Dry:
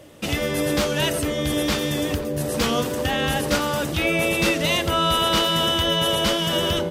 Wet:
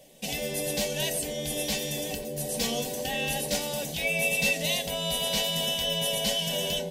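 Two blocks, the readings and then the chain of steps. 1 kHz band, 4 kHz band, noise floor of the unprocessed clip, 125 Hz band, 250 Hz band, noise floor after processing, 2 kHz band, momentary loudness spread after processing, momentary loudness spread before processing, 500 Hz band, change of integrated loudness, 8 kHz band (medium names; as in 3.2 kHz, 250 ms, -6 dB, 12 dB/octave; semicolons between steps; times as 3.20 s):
-13.0 dB, -6.0 dB, -27 dBFS, -10.5 dB, -11.5 dB, -36 dBFS, -5.5 dB, 7 LU, 5 LU, -8.0 dB, -6.5 dB, -0.5 dB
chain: treble shelf 4.1 kHz +5.5 dB; static phaser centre 340 Hz, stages 6; feedback comb 380 Hz, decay 0.17 s, harmonics all, mix 80%; trim +5 dB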